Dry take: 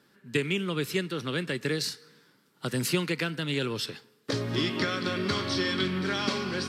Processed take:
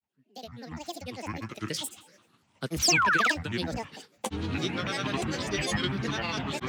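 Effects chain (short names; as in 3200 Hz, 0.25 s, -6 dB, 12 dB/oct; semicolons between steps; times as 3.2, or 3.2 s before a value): opening faded in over 2.22 s; painted sound fall, 2.86–3.23, 810–5400 Hz -22 dBFS; grains, pitch spread up and down by 12 st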